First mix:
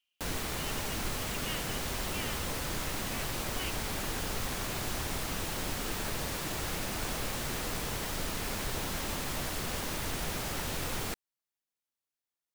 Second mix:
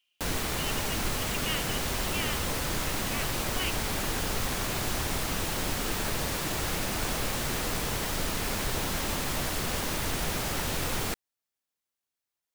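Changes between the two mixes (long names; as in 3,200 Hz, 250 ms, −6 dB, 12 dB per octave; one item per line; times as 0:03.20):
speech +7.0 dB
background +4.5 dB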